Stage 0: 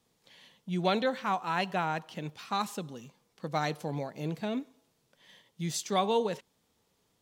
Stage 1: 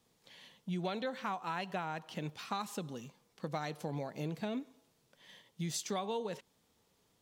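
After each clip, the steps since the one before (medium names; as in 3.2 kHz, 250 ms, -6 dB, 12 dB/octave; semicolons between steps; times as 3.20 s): compression 6:1, threshold -34 dBFS, peak gain reduction 11.5 dB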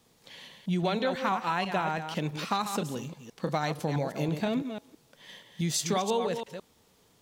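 chunks repeated in reverse 165 ms, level -7.5 dB; trim +8.5 dB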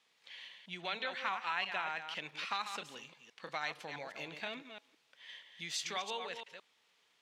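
band-pass filter 2.4 kHz, Q 1.3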